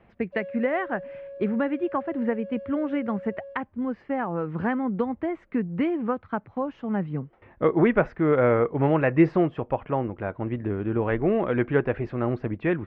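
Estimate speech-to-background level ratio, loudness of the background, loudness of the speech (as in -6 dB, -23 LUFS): 14.5 dB, -40.5 LUFS, -26.0 LUFS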